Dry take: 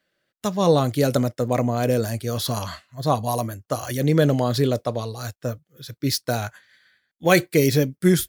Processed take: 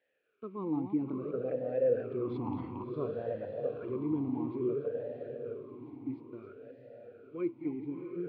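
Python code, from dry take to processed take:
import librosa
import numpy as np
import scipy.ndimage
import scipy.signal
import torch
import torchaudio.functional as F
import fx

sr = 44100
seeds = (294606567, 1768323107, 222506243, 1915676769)

p1 = fx.reverse_delay(x, sr, ms=196, wet_db=-8.5)
p2 = fx.doppler_pass(p1, sr, speed_mps=15, closest_m=5.9, pass_at_s=2.56)
p3 = fx.tilt_eq(p2, sr, slope=-2.5)
p4 = fx.over_compress(p3, sr, threshold_db=-29.0, ratio=-1.0)
p5 = p3 + F.gain(torch.from_numpy(p4), 2.0).numpy()
p6 = fx.quant_dither(p5, sr, seeds[0], bits=8, dither='triangular')
p7 = np.sign(p6) * np.maximum(np.abs(p6) - 10.0 ** (-46.5 / 20.0), 0.0)
p8 = fx.air_absorb(p7, sr, metres=480.0)
p9 = p8 + fx.echo_diffused(p8, sr, ms=670, feedback_pct=45, wet_db=-6, dry=0)
y = fx.vowel_sweep(p9, sr, vowels='e-u', hz=0.58)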